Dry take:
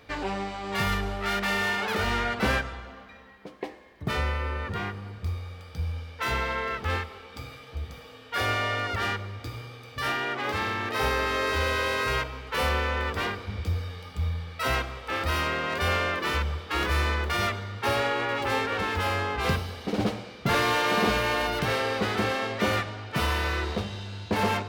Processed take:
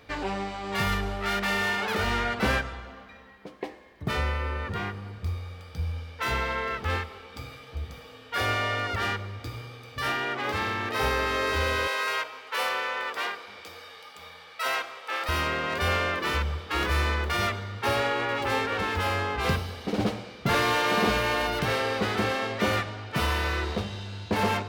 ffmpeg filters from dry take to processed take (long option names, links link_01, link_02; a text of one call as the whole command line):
ffmpeg -i in.wav -filter_complex "[0:a]asettb=1/sr,asplit=3[link_01][link_02][link_03];[link_01]atrim=end=11.874[link_04];[link_02]atrim=start=11.87:end=15.29,asetpts=PTS-STARTPTS,afade=type=in:duration=0.004:curve=qsin,afade=type=out:start_time=3.416:duration=0.004:curve=qsin,highpass=580[link_05];[link_03]atrim=start=15.286[link_06];[link_04][link_05]acrossfade=duration=0.004:curve1=hsin:curve2=qsin[link_07];[link_07][link_06]acrossfade=duration=0.004:curve1=qsin:curve2=hsin" out.wav